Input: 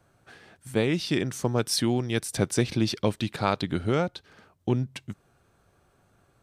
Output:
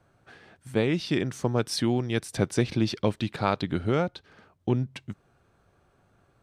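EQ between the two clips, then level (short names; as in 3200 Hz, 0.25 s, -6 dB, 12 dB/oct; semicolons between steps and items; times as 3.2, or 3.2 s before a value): high shelf 6500 Hz -10.5 dB; 0.0 dB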